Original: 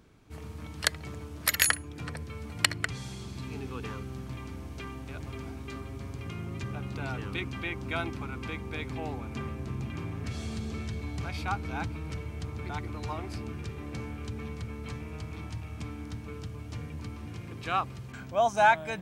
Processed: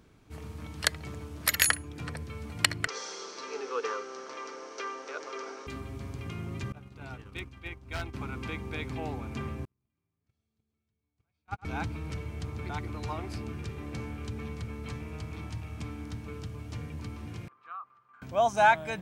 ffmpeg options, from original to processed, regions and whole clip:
ffmpeg -i in.wav -filter_complex "[0:a]asettb=1/sr,asplit=3[link_01][link_02][link_03];[link_01]atrim=end=2.874[link_04];[link_02]atrim=start=2.87:end=5.67,asetpts=PTS-STARTPTS,afade=type=in:duration=0.004:curve=qsin,afade=type=out:start_time=2.796:duration=0.004:curve=qsin,acontrast=55,highpass=frequency=430:width=0.5412,highpass=frequency=430:width=1.3066,equalizer=frequency=480:width_type=q:width=4:gain=10,equalizer=frequency=710:width_type=q:width=4:gain=-6,equalizer=frequency=1300:width_type=q:width=4:gain=6,equalizer=frequency=2500:width_type=q:width=4:gain=-5,equalizer=frequency=3500:width_type=q:width=4:gain=-5,equalizer=frequency=5800:width_type=q:width=4:gain=9,lowpass=frequency=6200:width=0.5412,lowpass=frequency=6200:width=1.3066[link_05];[link_03]atrim=start=5.666[link_06];[link_04][link_05]acrossfade=duration=0.004:curve1=hsin:curve2=qsin[link_07];[link_07][link_06]acrossfade=duration=0.004:curve1=qsin:curve2=hsin,asettb=1/sr,asplit=3[link_08][link_09][link_10];[link_08]atrim=end=6.724[link_11];[link_09]atrim=start=6.72:end=8.14,asetpts=PTS-STARTPTS,afade=type=in:duration=0.004:curve=qsin,afade=type=out:start_time=1.416:duration=0.004:curve=qsin,agate=range=-33dB:threshold=-28dB:ratio=3:release=100:detection=peak,aeval=exprs='0.0376*(abs(mod(val(0)/0.0376+3,4)-2)-1)':channel_layout=same,asubboost=boost=10.5:cutoff=78[link_12];[link_10]atrim=start=8.136[link_13];[link_11][link_12]acrossfade=duration=0.004:curve1=hsin:curve2=qsin[link_14];[link_14][link_13]acrossfade=duration=0.004:curve1=qsin:curve2=hsin,asettb=1/sr,asplit=3[link_15][link_16][link_17];[link_15]atrim=end=9.654[link_18];[link_16]atrim=start=9.65:end=11.65,asetpts=PTS-STARTPTS,afade=type=in:duration=0.004:curve=qsin,afade=type=out:start_time=1.996:duration=0.004:curve=qsin,agate=range=-48dB:threshold=-28dB:ratio=16:release=100:detection=peak,aecho=1:1:104:0.211,atrim=end_sample=88200[link_19];[link_17]atrim=start=11.646[link_20];[link_18][link_19]acrossfade=duration=0.004:curve1=hsin:curve2=qsin[link_21];[link_21][link_20]acrossfade=duration=0.004:curve1=qsin:curve2=hsin,asettb=1/sr,asplit=3[link_22][link_23][link_24];[link_22]atrim=end=17.484[link_25];[link_23]atrim=start=17.48:end=18.22,asetpts=PTS-STARTPTS,afade=type=in:duration=0.004:curve=qsin,afade=type=out:start_time=0.736:duration=0.004:curve=qsin,bandpass=frequency=1200:width_type=q:width=8.7,acompressor=threshold=-37dB:ratio=6:attack=3.2:release=140:knee=1:detection=peak[link_26];[link_24]atrim=start=18.216[link_27];[link_25][link_26]acrossfade=duration=0.004:curve1=hsin:curve2=qsin[link_28];[link_28][link_27]acrossfade=duration=0.004:curve1=qsin:curve2=hsin" out.wav

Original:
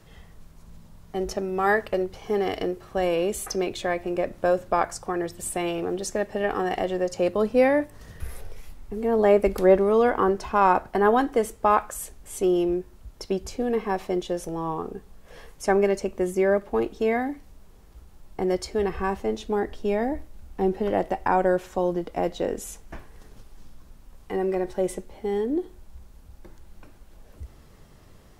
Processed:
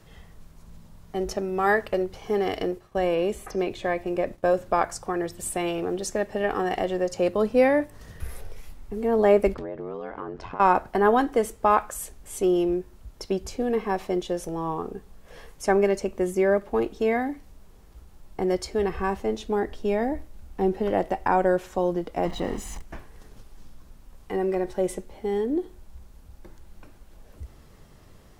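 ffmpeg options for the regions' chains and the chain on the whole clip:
ffmpeg -i in.wav -filter_complex "[0:a]asettb=1/sr,asplit=3[link_01][link_02][link_03];[link_01]atrim=end=2.724[link_04];[link_02]atrim=start=2.72:end=4.54,asetpts=PTS-STARTPTS,afade=type=in:duration=0.004:curve=qsin,afade=type=out:start_time=1.816:duration=0.004:curve=qsin,bandreject=frequency=1400:width=12,agate=range=-33dB:threshold=-40dB:ratio=3:release=100:detection=peak,acrossover=split=2800[link_05][link_06];[link_06]acompressor=threshold=-45dB:ratio=4:attack=1:release=60[link_07];[link_05][link_07]amix=inputs=2:normalize=0[link_08];[link_03]atrim=start=4.536[link_09];[link_04][link_08]acrossfade=duration=0.004:curve1=hsin:curve2=qsin[link_10];[link_10][link_09]acrossfade=duration=0.004:curve1=qsin:curve2=hsin,asettb=1/sr,asplit=3[link_11][link_12][link_13];[link_11]atrim=end=9.544[link_14];[link_12]atrim=start=9.54:end=10.6,asetpts=PTS-STARTPTS,afade=type=in:duration=0.004:curve=qsin,afade=type=out:start_time=1.056:duration=0.004:curve=qsin,lowpass=4000,acompressor=threshold=-28dB:ratio=10:attack=3.2:release=140:knee=1:detection=peak,aeval=exprs='val(0)*sin(2*PI*45*n/s)':channel_layout=same[link_15];[link_13]atrim=start=10.596[link_16];[link_14][link_15]acrossfade=duration=0.004:curve1=hsin:curve2=qsin[link_17];[link_17][link_16]acrossfade=duration=0.004:curve1=qsin:curve2=hsin,asettb=1/sr,asplit=3[link_18][link_19][link_20];[link_18]atrim=end=22.254[link_21];[link_19]atrim=start=22.25:end=22.82,asetpts=PTS-STARTPTS,afade=type=in:duration=0.004:curve=qsin,afade=type=out:start_time=0.566:duration=0.004:curve=qsin,aeval=exprs='val(0)+0.5*0.02*sgn(val(0))':channel_layout=same,lowpass=frequency=2800:poles=1,aecho=1:1:1:0.56,atrim=end_sample=25137[link_22];[link_20]atrim=start=22.816[link_23];[link_21][link_22]acrossfade=duration=0.004:curve1=hsin:curve2=qsin[link_24];[link_24][link_23]acrossfade=duration=0.004:curve1=qsin:curve2=hsin" out.wav

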